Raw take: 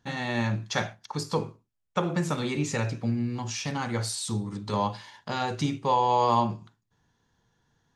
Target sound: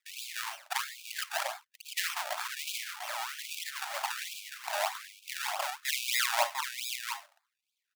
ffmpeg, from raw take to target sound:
ffmpeg -i in.wav -filter_complex "[0:a]asettb=1/sr,asplit=3[link_01][link_02][link_03];[link_01]atrim=end=1.394[link_04];[link_02]atrim=start=1.39:end=2.14,asetpts=PTS-STARTPTS,afade=type=in:duration=0.004:curve=qsin,afade=type=out:start_time=0.746:duration=0.004:curve=qsin,lowshelf=frequency=380:gain=10.5[link_05];[link_03]atrim=start=2.136[link_06];[link_04][link_05]acrossfade=duration=0.004:curve1=hsin:curve2=qsin[link_07];[link_07][link_06]acrossfade=duration=0.004:curve1=qsin:curve2=hsin,acrossover=split=2900[link_08][link_09];[link_08]aeval=exprs='sgn(val(0))*max(abs(val(0))-0.00211,0)':channel_layout=same[link_10];[link_10][link_09]amix=inputs=2:normalize=0,lowpass=frequency=5200:width_type=q:width=3.4,acrusher=samples=29:mix=1:aa=0.000001:lfo=1:lforange=29:lforate=3.2,asettb=1/sr,asplit=3[link_11][link_12][link_13];[link_11]atrim=end=4.844[link_14];[link_12]atrim=start=4.84:end=5.69,asetpts=PTS-STARTPTS,afade=type=in:duration=0.004:curve=qsin,afade=type=out:start_time=0.846:duration=0.004:curve=qsin,afreqshift=-35[link_15];[link_13]atrim=start=5.686[link_16];[link_14][link_15]acrossfade=duration=0.004:curve1=hsin:curve2=qsin[link_17];[link_17][link_16]acrossfade=duration=0.004:curve1=qsin:curve2=hsin,aecho=1:1:698:0.501,afftfilt=real='re*gte(b*sr/1024,550*pow(2300/550,0.5+0.5*sin(2*PI*1.2*pts/sr)))':imag='im*gte(b*sr/1024,550*pow(2300/550,0.5+0.5*sin(2*PI*1.2*pts/sr)))':win_size=1024:overlap=0.75" out.wav

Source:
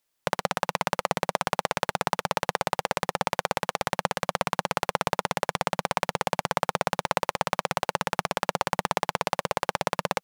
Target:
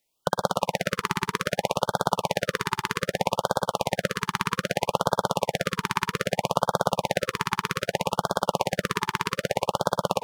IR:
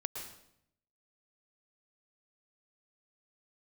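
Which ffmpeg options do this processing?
-filter_complex "[0:a]asplit=2[link_01][link_02];[1:a]atrim=start_sample=2205,atrim=end_sample=6174,highshelf=frequency=5000:gain=-5.5[link_03];[link_02][link_03]afir=irnorm=-1:irlink=0,volume=2.5dB[link_04];[link_01][link_04]amix=inputs=2:normalize=0,afftfilt=real='re*(1-between(b*sr/1024,580*pow(2300/580,0.5+0.5*sin(2*PI*0.63*pts/sr))/1.41,580*pow(2300/580,0.5+0.5*sin(2*PI*0.63*pts/sr))*1.41))':imag='im*(1-between(b*sr/1024,580*pow(2300/580,0.5+0.5*sin(2*PI*0.63*pts/sr))/1.41,580*pow(2300/580,0.5+0.5*sin(2*PI*0.63*pts/sr))*1.41))':win_size=1024:overlap=0.75,volume=-3.5dB"

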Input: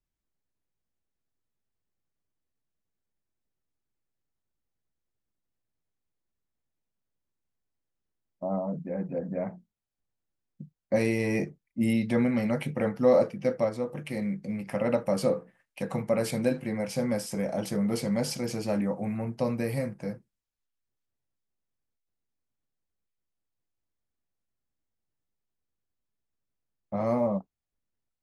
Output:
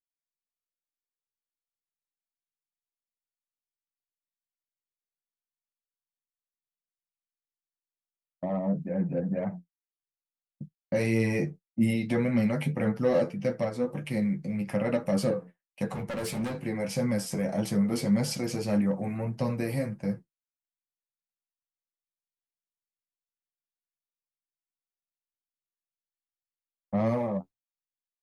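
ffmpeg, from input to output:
ffmpeg -i in.wav -filter_complex "[0:a]agate=range=-33dB:threshold=-38dB:ratio=3:detection=peak,equalizer=frequency=150:width_type=o:width=0.54:gain=6.5,asplit=2[link_01][link_02];[link_02]acompressor=threshold=-35dB:ratio=6,volume=-2dB[link_03];[link_01][link_03]amix=inputs=2:normalize=0,asettb=1/sr,asplit=3[link_04][link_05][link_06];[link_04]atrim=end=15.924[link_07];[link_05]atrim=start=15.92:end=16.66,asetpts=PTS-STARTPTS,afade=type=in:duration=0.004:curve=qsin,afade=type=out:start_time=0.736:duration=0.004:curve=qsin,asoftclip=type=hard:threshold=-27.5dB[link_08];[link_06]atrim=start=16.656[link_09];[link_07][link_08]acrossfade=duration=0.004:curve1=hsin:curve2=qsin[link_10];[link_10][link_09]acrossfade=duration=0.004:curve1=qsin:curve2=hsin,flanger=delay=8.8:depth=3.5:regen=30:speed=1.7:shape=triangular,acrossover=split=520|1200[link_11][link_12][link_13];[link_12]asoftclip=type=tanh:threshold=-35dB[link_14];[link_11][link_14][link_13]amix=inputs=3:normalize=0,volume=2dB" out.wav

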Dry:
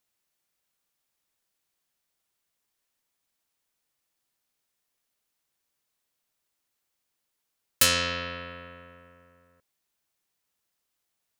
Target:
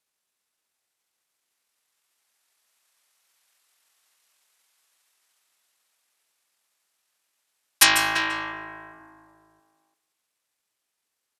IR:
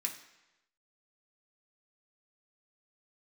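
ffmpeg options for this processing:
-filter_complex "[0:a]lowshelf=frequency=260:gain=-11.5,bandreject=frequency=140.1:width_type=h:width=4,bandreject=frequency=280.2:width_type=h:width=4,bandreject=frequency=420.3:width_type=h:width=4,bandreject=frequency=560.4:width_type=h:width=4,bandreject=frequency=700.5:width_type=h:width=4,bandreject=frequency=840.6:width_type=h:width=4,bandreject=frequency=980.7:width_type=h:width=4,bandreject=frequency=1120.8:width_type=h:width=4,bandreject=frequency=1260.9:width_type=h:width=4,bandreject=frequency=1401:width_type=h:width=4,bandreject=frequency=1541.1:width_type=h:width=4,bandreject=frequency=1681.2:width_type=h:width=4,bandreject=frequency=1821.3:width_type=h:width=4,bandreject=frequency=1961.4:width_type=h:width=4,bandreject=frequency=2101.5:width_type=h:width=4,bandreject=frequency=2241.6:width_type=h:width=4,bandreject=frequency=2381.7:width_type=h:width=4,bandreject=frequency=2521.8:width_type=h:width=4,bandreject=frequency=2661.9:width_type=h:width=4,bandreject=frequency=2802:width_type=h:width=4,bandreject=frequency=2942.1:width_type=h:width=4,acrossover=split=1000[link_01][link_02];[link_02]dynaudnorm=framelen=280:gausssize=17:maxgain=12.5dB[link_03];[link_01][link_03]amix=inputs=2:normalize=0,asetrate=26990,aresample=44100,atempo=1.63392,asplit=2[link_04][link_05];[link_05]adelay=340,highpass=300,lowpass=3400,asoftclip=type=hard:threshold=-11dB,volume=-7dB[link_06];[link_04][link_06]amix=inputs=2:normalize=0,asplit=2[link_07][link_08];[1:a]atrim=start_sample=2205,adelay=144[link_09];[link_08][link_09]afir=irnorm=-1:irlink=0,volume=-11.5dB[link_10];[link_07][link_10]amix=inputs=2:normalize=0"

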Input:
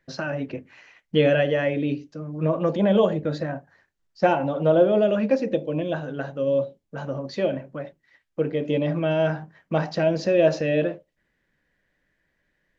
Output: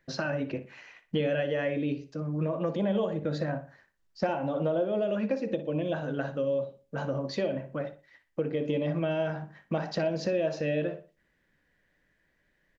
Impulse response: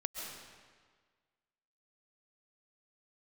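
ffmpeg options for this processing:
-filter_complex "[0:a]acompressor=threshold=-27dB:ratio=4,asplit=2[link_01][link_02];[link_02]adelay=60,lowpass=frequency=3800:poles=1,volume=-12dB,asplit=2[link_03][link_04];[link_04]adelay=60,lowpass=frequency=3800:poles=1,volume=0.33,asplit=2[link_05][link_06];[link_06]adelay=60,lowpass=frequency=3800:poles=1,volume=0.33[link_07];[link_03][link_05][link_07]amix=inputs=3:normalize=0[link_08];[link_01][link_08]amix=inputs=2:normalize=0"

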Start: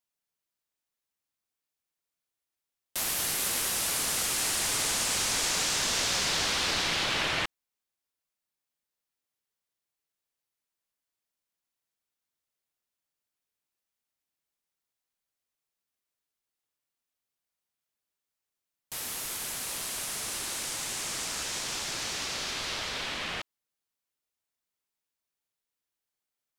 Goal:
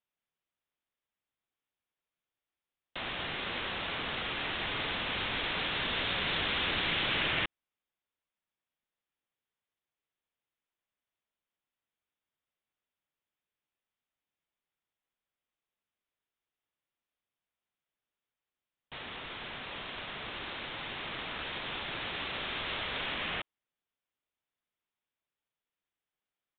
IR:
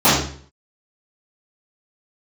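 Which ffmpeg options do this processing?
-filter_complex "[0:a]aresample=8000,aresample=44100,acrossover=split=510|1400[link_01][link_02][link_03];[link_02]alimiter=level_in=12.5dB:limit=-24dB:level=0:latency=1,volume=-12.5dB[link_04];[link_01][link_04][link_03]amix=inputs=3:normalize=0"

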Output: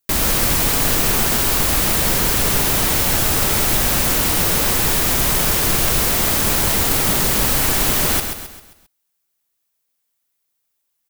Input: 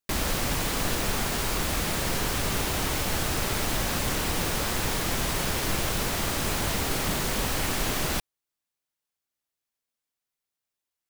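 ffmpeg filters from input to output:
ffmpeg -i in.wav -af "highshelf=frequency=9400:gain=11,aecho=1:1:133|266|399|532|665:0.447|0.197|0.0865|0.0381|0.0167,volume=6.5dB" out.wav

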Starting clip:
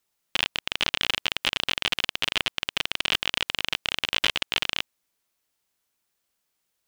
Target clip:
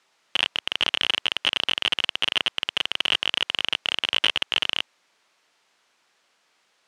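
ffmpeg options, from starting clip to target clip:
ffmpeg -i in.wav -filter_complex "[0:a]asplit=2[link_01][link_02];[link_02]highpass=frequency=720:poles=1,volume=26dB,asoftclip=type=tanh:threshold=-3.5dB[link_03];[link_01][link_03]amix=inputs=2:normalize=0,lowpass=frequency=2400:poles=1,volume=-6dB,highpass=110,lowpass=7400" out.wav

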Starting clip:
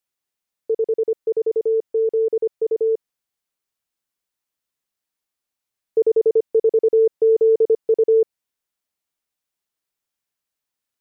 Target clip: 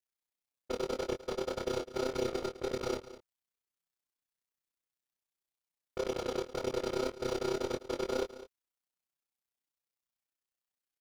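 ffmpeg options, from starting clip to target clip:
ffmpeg -i in.wav -filter_complex "[0:a]agate=range=-10dB:threshold=-23dB:ratio=16:detection=peak,alimiter=limit=-15.5dB:level=0:latency=1,aeval=exprs='0.168*(cos(1*acos(clip(val(0)/0.168,-1,1)))-cos(1*PI/2))+0.0335*(cos(4*acos(clip(val(0)/0.168,-1,1)))-cos(4*PI/2))+0.00668*(cos(5*acos(clip(val(0)/0.168,-1,1)))-cos(5*PI/2))+0.0596*(cos(6*acos(clip(val(0)/0.168,-1,1)))-cos(6*PI/2))+0.000944*(cos(8*acos(clip(val(0)/0.168,-1,1)))-cos(8*PI/2))':channel_layout=same,aeval=exprs='val(0)*sin(2*PI*63*n/s)':channel_layout=same,volume=33dB,asoftclip=hard,volume=-33dB,flanger=delay=16:depth=5:speed=1.8,tremolo=f=31:d=0.947,asplit=2[link_01][link_02];[link_02]adelay=23,volume=-7dB[link_03];[link_01][link_03]amix=inputs=2:normalize=0,aecho=1:1:205:0.168,volume=8dB" out.wav

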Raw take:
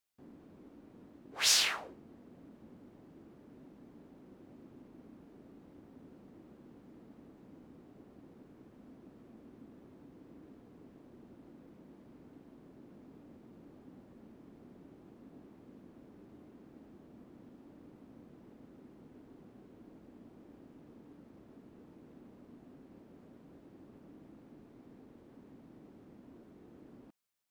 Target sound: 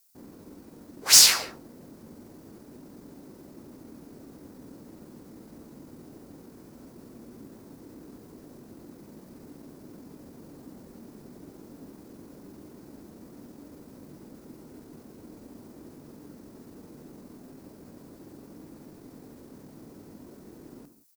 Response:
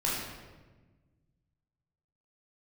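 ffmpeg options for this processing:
-filter_complex "[0:a]aexciter=amount=5.8:drive=1.4:freq=4400,acontrast=76,asoftclip=type=tanh:threshold=-10dB,atempo=1.3,asplit=2[link_01][link_02];[1:a]atrim=start_sample=2205,afade=type=out:start_time=0.24:duration=0.01,atrim=end_sample=11025[link_03];[link_02][link_03]afir=irnorm=-1:irlink=0,volume=-15.5dB[link_04];[link_01][link_04]amix=inputs=2:normalize=0"

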